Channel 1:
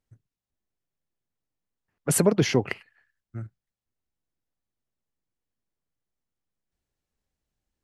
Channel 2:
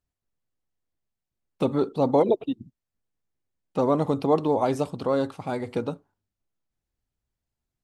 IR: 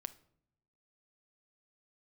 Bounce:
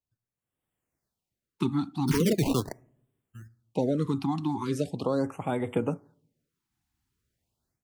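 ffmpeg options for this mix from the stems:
-filter_complex "[0:a]afwtdn=0.0224,alimiter=limit=-14.5dB:level=0:latency=1:release=24,acrusher=samples=21:mix=1:aa=0.000001:lfo=1:lforange=33.6:lforate=0.42,volume=-2dB,asplit=2[link_01][link_02];[link_02]volume=-8dB[link_03];[1:a]highpass=65,dynaudnorm=framelen=350:gausssize=3:maxgain=16dB,volume=-10.5dB,asplit=3[link_04][link_05][link_06];[link_05]volume=-10dB[link_07];[link_06]apad=whole_len=345451[link_08];[link_01][link_08]sidechaingate=range=-15dB:threshold=-47dB:ratio=16:detection=peak[link_09];[2:a]atrim=start_sample=2205[link_10];[link_03][link_07]amix=inputs=2:normalize=0[link_11];[link_11][link_10]afir=irnorm=-1:irlink=0[link_12];[link_09][link_04][link_12]amix=inputs=3:normalize=0,acrossover=split=300|3000[link_13][link_14][link_15];[link_14]acompressor=threshold=-27dB:ratio=6[link_16];[link_13][link_16][link_15]amix=inputs=3:normalize=0,afftfilt=real='re*(1-between(b*sr/1024,480*pow(5400/480,0.5+0.5*sin(2*PI*0.4*pts/sr))/1.41,480*pow(5400/480,0.5+0.5*sin(2*PI*0.4*pts/sr))*1.41))':imag='im*(1-between(b*sr/1024,480*pow(5400/480,0.5+0.5*sin(2*PI*0.4*pts/sr))/1.41,480*pow(5400/480,0.5+0.5*sin(2*PI*0.4*pts/sr))*1.41))':win_size=1024:overlap=0.75"

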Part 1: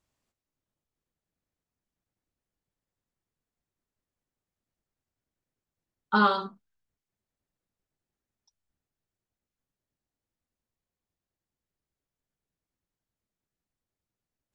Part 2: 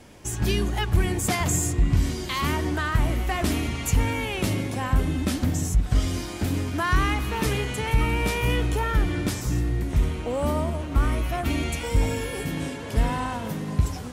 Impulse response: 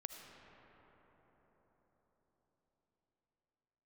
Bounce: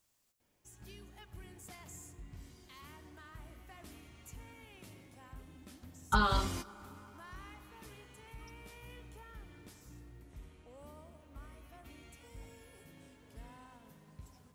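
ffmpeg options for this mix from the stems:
-filter_complex "[0:a]acompressor=threshold=-26dB:ratio=6,crystalizer=i=2:c=0,volume=-1.5dB,asplit=3[link_01][link_02][link_03];[link_01]atrim=end=10.23,asetpts=PTS-STARTPTS,afade=type=out:start_time=10.226:duration=0.004:curve=hsin[link_04];[link_02]atrim=start=10.23:end=10.78,asetpts=PTS-STARTPTS,volume=0[link_05];[link_03]atrim=start=10.78,asetpts=PTS-STARTPTS,afade=type=in:duration=0.004:curve=hsin[link_06];[link_04][link_05][link_06]concat=n=3:v=0:a=1,asplit=3[link_07][link_08][link_09];[link_08]volume=-8.5dB[link_10];[1:a]highshelf=frequency=11000:gain=6,adelay=400,volume=-9.5dB,asplit=2[link_11][link_12];[link_12]volume=-20.5dB[link_13];[link_09]apad=whole_len=640736[link_14];[link_11][link_14]sidechaingate=range=-22dB:threshold=-55dB:ratio=16:detection=peak[link_15];[2:a]atrim=start_sample=2205[link_16];[link_10][link_13]amix=inputs=2:normalize=0[link_17];[link_17][link_16]afir=irnorm=-1:irlink=0[link_18];[link_07][link_15][link_18]amix=inputs=3:normalize=0,lowshelf=frequency=470:gain=-3.5"

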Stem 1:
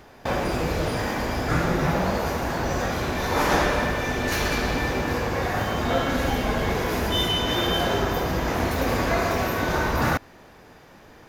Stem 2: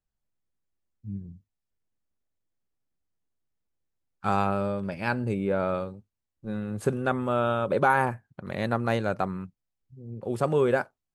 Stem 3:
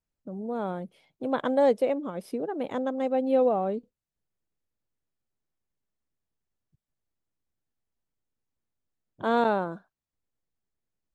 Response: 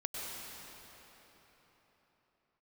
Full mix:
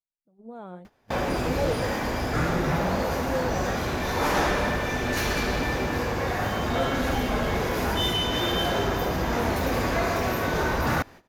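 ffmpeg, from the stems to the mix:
-filter_complex "[0:a]asoftclip=type=tanh:threshold=-14dB,adelay=850,volume=-1dB[link_01];[1:a]volume=-12.5dB[link_02];[2:a]flanger=delay=2.4:depth=9.2:regen=53:speed=0.71:shape=triangular,volume=-4.5dB[link_03];[link_01][link_02][link_03]amix=inputs=3:normalize=0,agate=range=-17dB:threshold=-44dB:ratio=16:detection=peak"

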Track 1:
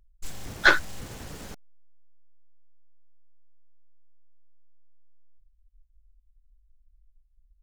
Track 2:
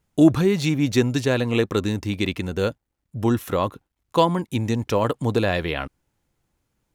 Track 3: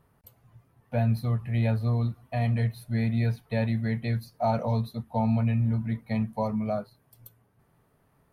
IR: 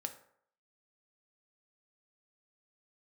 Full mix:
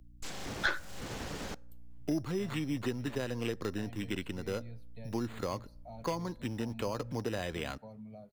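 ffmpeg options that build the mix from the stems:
-filter_complex "[0:a]aeval=exprs='val(0)+0.00112*(sin(2*PI*60*n/s)+sin(2*PI*2*60*n/s)/2+sin(2*PI*3*60*n/s)/3+sin(2*PI*4*60*n/s)/4+sin(2*PI*5*60*n/s)/5)':channel_layout=same,volume=1.5dB,asplit=2[link_01][link_02];[link_02]volume=-13.5dB[link_03];[1:a]acrusher=samples=8:mix=1:aa=0.000001,adelay=1900,volume=-11.5dB,asplit=2[link_04][link_05];[link_05]volume=-15.5dB[link_06];[2:a]acompressor=threshold=-52dB:ratio=1.5,equalizer=frequency=1300:width_type=o:width=0.93:gain=-13.5,adelay=1450,volume=-11dB,asplit=2[link_07][link_08];[link_08]volume=-15dB[link_09];[3:a]atrim=start_sample=2205[link_10];[link_03][link_06][link_09]amix=inputs=3:normalize=0[link_11];[link_11][link_10]afir=irnorm=-1:irlink=0[link_12];[link_01][link_04][link_07][link_12]amix=inputs=4:normalize=0,acrossover=split=180|6600[link_13][link_14][link_15];[link_13]acompressor=threshold=-42dB:ratio=4[link_16];[link_14]acompressor=threshold=-32dB:ratio=4[link_17];[link_15]acompressor=threshold=-59dB:ratio=4[link_18];[link_16][link_17][link_18]amix=inputs=3:normalize=0"

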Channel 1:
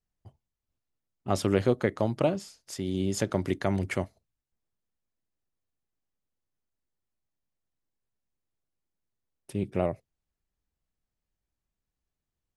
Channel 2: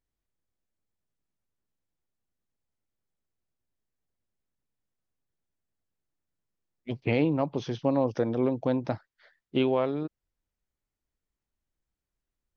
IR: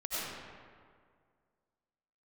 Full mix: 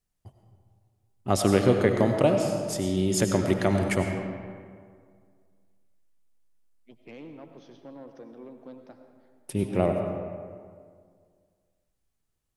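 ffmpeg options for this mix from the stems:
-filter_complex "[0:a]volume=1dB,asplit=2[link_01][link_02];[link_02]volume=-6.5dB[link_03];[1:a]highpass=frequency=160:width=0.5412,highpass=frequency=160:width=1.3066,asoftclip=type=tanh:threshold=-18dB,volume=-19dB,asplit=2[link_04][link_05];[link_05]volume=-10dB[link_06];[2:a]atrim=start_sample=2205[link_07];[link_03][link_06]amix=inputs=2:normalize=0[link_08];[link_08][link_07]afir=irnorm=-1:irlink=0[link_09];[link_01][link_04][link_09]amix=inputs=3:normalize=0,equalizer=frequency=10000:width=1:gain=6"

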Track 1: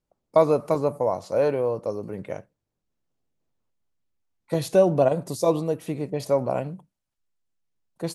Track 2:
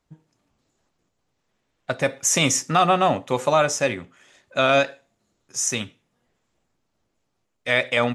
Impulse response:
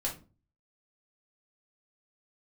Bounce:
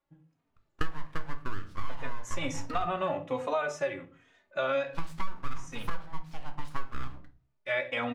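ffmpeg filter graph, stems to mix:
-filter_complex "[0:a]acrossover=split=470 3600:gain=0.0794 1 0.0708[link_01][link_02][link_03];[link_01][link_02][link_03]amix=inputs=3:normalize=0,aeval=exprs='abs(val(0))':channel_layout=same,adelay=450,volume=-3.5dB,asplit=2[link_04][link_05];[link_05]volume=-4.5dB[link_06];[1:a]bass=frequency=250:gain=-6,treble=frequency=4000:gain=-14,asplit=2[link_07][link_08];[link_08]adelay=3,afreqshift=-1.3[link_09];[link_07][link_09]amix=inputs=2:normalize=1,volume=-8.5dB,asplit=2[link_10][link_11];[link_11]volume=-5dB[link_12];[2:a]atrim=start_sample=2205[link_13];[link_06][link_12]amix=inputs=2:normalize=0[link_14];[link_14][link_13]afir=irnorm=-1:irlink=0[link_15];[link_04][link_10][link_15]amix=inputs=3:normalize=0,acompressor=threshold=-26dB:ratio=4"

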